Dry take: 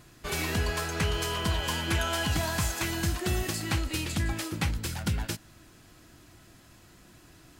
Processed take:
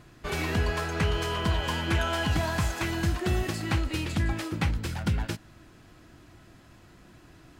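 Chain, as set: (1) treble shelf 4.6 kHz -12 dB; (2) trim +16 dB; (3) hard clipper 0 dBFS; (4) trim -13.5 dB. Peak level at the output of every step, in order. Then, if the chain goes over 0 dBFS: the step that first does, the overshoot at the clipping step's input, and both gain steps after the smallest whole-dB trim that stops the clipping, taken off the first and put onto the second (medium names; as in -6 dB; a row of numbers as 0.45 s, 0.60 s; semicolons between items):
-17.5 dBFS, -1.5 dBFS, -1.5 dBFS, -15.0 dBFS; nothing clips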